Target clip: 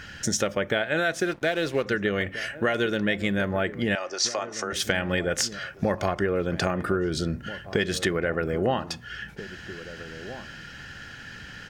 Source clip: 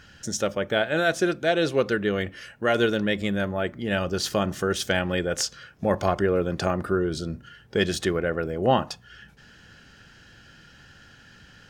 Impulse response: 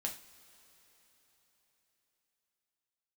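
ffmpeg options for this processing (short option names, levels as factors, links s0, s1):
-filter_complex "[0:a]equalizer=f=2000:t=o:w=0.7:g=6,acompressor=threshold=0.0355:ratio=6,asettb=1/sr,asplit=3[s0][s1][s2];[s0]atrim=end=1.204[s3];[s1]atrim=start=1.2:end=1.85,asetpts=PTS-STARTPTS,afade=t=in:d=0.004:c=qsin,afade=t=out:st=0.646:d=0.004:c=qsin,aeval=exprs='sgn(val(0))*max(abs(val(0))-0.00335,0)':c=same[s4];[s2]atrim=start=1.846[s5];[s3][s4]acrossfade=d=0.004:c1=hsin:c2=qsin[s6];[s6][s5]acrossfade=d=0.004:c1=qsin:c2=hsin,asettb=1/sr,asplit=3[s7][s8][s9];[s7]atrim=end=3.954[s10];[s8]atrim=start=3.95:end=4.73,asetpts=PTS-STARTPTS,afade=t=in:d=0.004:c=qsin,afade=t=out:st=0.776:d=0.004:c=qsin,highpass=f=410:w=0.5412,highpass=f=410:w=1.3066,equalizer=f=440:t=q:w=4:g=-9,equalizer=f=1600:t=q:w=4:g=-6,equalizer=f=3100:t=q:w=4:g=-10,equalizer=f=5700:t=q:w=4:g=9,lowpass=f=7900:w=0.5412,lowpass=f=7900:w=1.3066[s11];[s9]atrim=start=4.726[s12];[s10][s11]acrossfade=d=0.004:c1=hsin:c2=qsin[s13];[s13][s12]acrossfade=d=0.004:c1=qsin:c2=hsin,asplit=2[s14][s15];[s15]adelay=1633,volume=0.2,highshelf=f=4000:g=-36.7[s16];[s14][s16]amix=inputs=2:normalize=0,volume=2.24"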